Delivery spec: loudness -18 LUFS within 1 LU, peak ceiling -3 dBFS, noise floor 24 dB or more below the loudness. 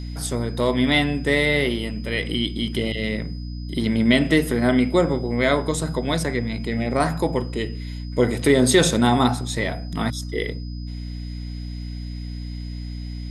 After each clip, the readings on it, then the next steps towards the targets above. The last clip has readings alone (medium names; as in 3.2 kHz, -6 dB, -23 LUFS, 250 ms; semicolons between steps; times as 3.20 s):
hum 60 Hz; highest harmonic 300 Hz; hum level -28 dBFS; steady tone 5 kHz; tone level -46 dBFS; loudness -21.5 LUFS; peak level -4.0 dBFS; loudness target -18.0 LUFS
-> de-hum 60 Hz, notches 5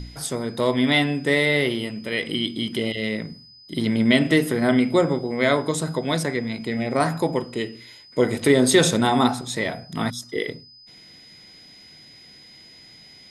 hum not found; steady tone 5 kHz; tone level -46 dBFS
-> band-stop 5 kHz, Q 30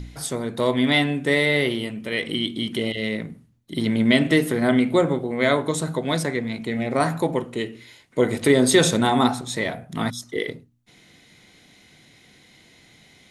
steady tone not found; loudness -22.0 LUFS; peak level -3.5 dBFS; loudness target -18.0 LUFS
-> trim +4 dB; peak limiter -3 dBFS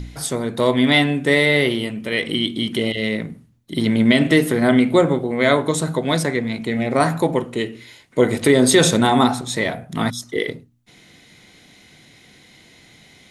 loudness -18.5 LUFS; peak level -3.0 dBFS; noise floor -50 dBFS